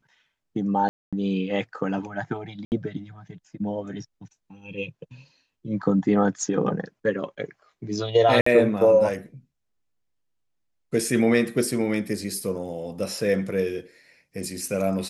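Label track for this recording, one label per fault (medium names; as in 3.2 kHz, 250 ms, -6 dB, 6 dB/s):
0.890000	1.130000	dropout 236 ms
2.650000	2.720000	dropout 69 ms
8.410000	8.460000	dropout 54 ms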